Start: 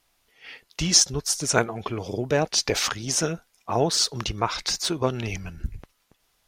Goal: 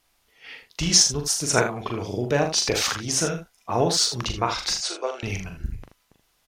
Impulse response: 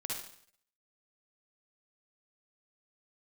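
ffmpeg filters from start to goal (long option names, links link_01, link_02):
-filter_complex "[0:a]asettb=1/sr,asplit=3[link_01][link_02][link_03];[link_01]atrim=end=4.734[link_04];[link_02]atrim=start=4.73:end=5.23,asetpts=PTS-STARTPTS,afade=type=in:duration=0.004:curve=qsin,afade=type=out:start_time=0.496:duration=0.004:curve=qsin,highpass=frequency=490:width=0.5412,highpass=frequency=490:width=1.3066,equalizer=frequency=970:width_type=q:width=4:gain=-8,equalizer=frequency=1800:width_type=q:width=4:gain=-4,equalizer=frequency=3500:width_type=q:width=4:gain=-7,lowpass=frequency=8700:width=0.5412,lowpass=frequency=8700:width=1.3066[link_05];[link_03]atrim=start=5.226[link_06];[link_04][link_05]acrossfade=duration=0.004:curve1=hsin:curve2=qsin[link_07];[link_07][link_06]acrossfade=duration=0.004:curve1=qsin:curve2=hsin,aecho=1:1:41|79:0.501|0.335"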